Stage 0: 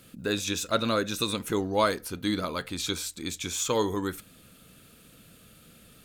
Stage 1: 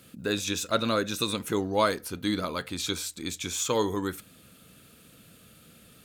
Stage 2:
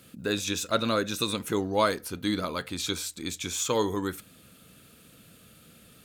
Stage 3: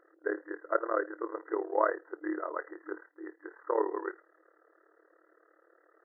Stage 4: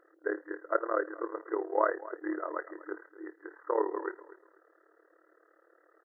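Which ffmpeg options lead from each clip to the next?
-af "highpass=55"
-af anull
-af "tremolo=f=37:d=0.857,afftfilt=real='re*between(b*sr/4096,310,2000)':imag='im*between(b*sr/4096,310,2000)':win_size=4096:overlap=0.75,volume=1dB"
-af "aecho=1:1:244|488:0.133|0.0347"

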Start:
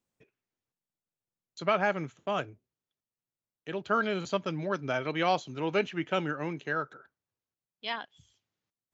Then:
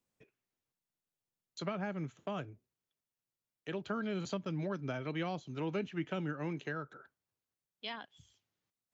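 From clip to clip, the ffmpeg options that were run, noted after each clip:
-filter_complex "[0:a]acrossover=split=290[a][b];[b]acompressor=threshold=-38dB:ratio=6[c];[a][c]amix=inputs=2:normalize=0,volume=-1dB"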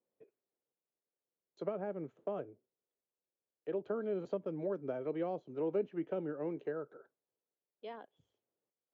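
-af "bandpass=f=470:t=q:w=2.3:csg=0,volume=6.5dB"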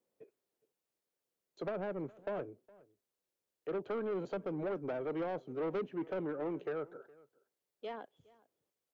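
-filter_complex "[0:a]asoftclip=type=tanh:threshold=-36.5dB,asplit=2[a][b];[b]adelay=414,volume=-23dB,highshelf=f=4k:g=-9.32[c];[a][c]amix=inputs=2:normalize=0,volume=4.5dB"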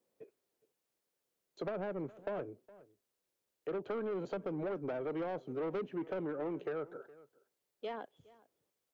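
-af "acompressor=threshold=-39dB:ratio=3,volume=3dB"

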